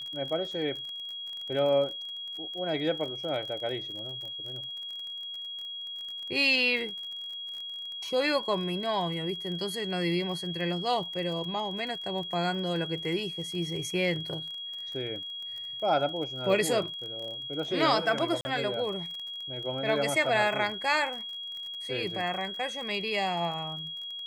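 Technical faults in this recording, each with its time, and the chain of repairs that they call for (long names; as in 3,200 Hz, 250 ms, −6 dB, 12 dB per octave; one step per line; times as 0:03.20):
surface crackle 34 per second −37 dBFS
whistle 3,300 Hz −36 dBFS
0:18.41–0:18.45: drop-out 40 ms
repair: click removal
notch filter 3,300 Hz, Q 30
repair the gap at 0:18.41, 40 ms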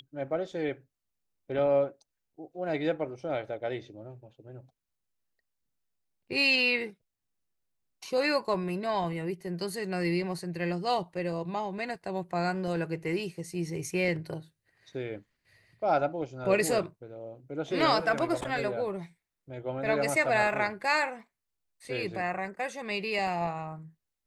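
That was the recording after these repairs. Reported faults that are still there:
none of them is left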